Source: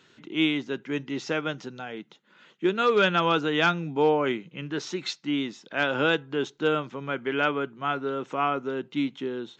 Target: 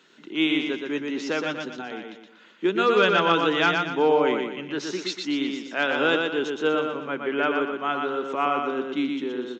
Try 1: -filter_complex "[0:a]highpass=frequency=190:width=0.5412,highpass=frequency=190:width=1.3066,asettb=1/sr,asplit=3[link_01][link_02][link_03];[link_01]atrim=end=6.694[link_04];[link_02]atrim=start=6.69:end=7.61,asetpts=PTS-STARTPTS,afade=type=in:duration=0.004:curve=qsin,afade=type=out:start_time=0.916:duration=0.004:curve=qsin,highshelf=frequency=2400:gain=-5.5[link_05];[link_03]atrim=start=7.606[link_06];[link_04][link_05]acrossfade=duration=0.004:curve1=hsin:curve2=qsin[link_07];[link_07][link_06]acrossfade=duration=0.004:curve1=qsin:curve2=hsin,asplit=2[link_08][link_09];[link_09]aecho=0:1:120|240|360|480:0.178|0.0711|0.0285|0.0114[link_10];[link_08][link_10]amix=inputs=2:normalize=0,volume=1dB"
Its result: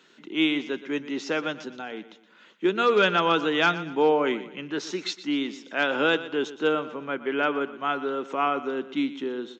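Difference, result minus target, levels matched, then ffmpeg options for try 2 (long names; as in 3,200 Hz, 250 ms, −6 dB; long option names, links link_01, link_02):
echo-to-direct −11 dB
-filter_complex "[0:a]highpass=frequency=190:width=0.5412,highpass=frequency=190:width=1.3066,asettb=1/sr,asplit=3[link_01][link_02][link_03];[link_01]atrim=end=6.694[link_04];[link_02]atrim=start=6.69:end=7.61,asetpts=PTS-STARTPTS,afade=type=in:duration=0.004:curve=qsin,afade=type=out:start_time=0.916:duration=0.004:curve=qsin,highshelf=frequency=2400:gain=-5.5[link_05];[link_03]atrim=start=7.606[link_06];[link_04][link_05]acrossfade=duration=0.004:curve1=hsin:curve2=qsin[link_07];[link_07][link_06]acrossfade=duration=0.004:curve1=qsin:curve2=hsin,asplit=2[link_08][link_09];[link_09]aecho=0:1:120|240|360|480|600:0.631|0.252|0.101|0.0404|0.0162[link_10];[link_08][link_10]amix=inputs=2:normalize=0,volume=1dB"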